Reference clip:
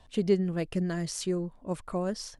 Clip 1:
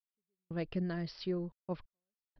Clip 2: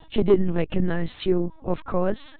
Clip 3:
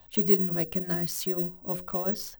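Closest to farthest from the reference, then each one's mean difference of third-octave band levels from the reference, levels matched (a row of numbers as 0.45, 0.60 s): 3, 2, 1; 3.5, 6.5, 10.5 dB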